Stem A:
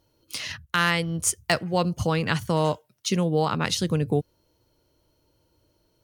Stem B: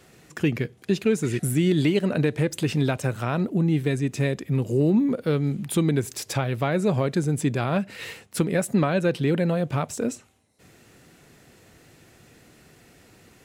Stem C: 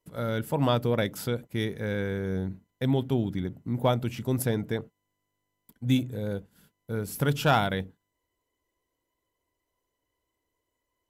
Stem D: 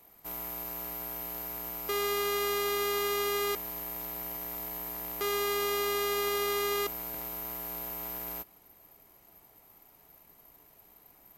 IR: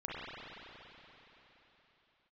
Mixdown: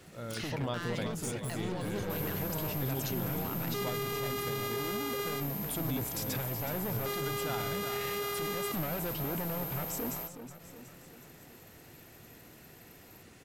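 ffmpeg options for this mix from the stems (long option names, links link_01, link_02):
-filter_complex "[0:a]acompressor=threshold=-29dB:ratio=2,volume=-1.5dB[link_01];[1:a]asoftclip=type=hard:threshold=-26.5dB,volume=-2dB,asplit=2[link_02][link_03];[link_03]volume=-15.5dB[link_04];[2:a]volume=-11dB,asplit=2[link_05][link_06];[link_06]volume=-8.5dB[link_07];[3:a]flanger=delay=8.6:depth=9.2:regen=67:speed=0.62:shape=triangular,adelay=1850,volume=3dB[link_08];[link_01][link_02]amix=inputs=2:normalize=0,aeval=exprs='clip(val(0),-1,0.0422)':channel_layout=same,acompressor=threshold=-38dB:ratio=3,volume=0dB[link_09];[link_04][link_07]amix=inputs=2:normalize=0,aecho=0:1:369|738|1107|1476|1845|2214|2583|2952:1|0.54|0.292|0.157|0.085|0.0459|0.0248|0.0134[link_10];[link_05][link_08][link_09][link_10]amix=inputs=4:normalize=0,alimiter=level_in=0.5dB:limit=-24dB:level=0:latency=1:release=26,volume=-0.5dB"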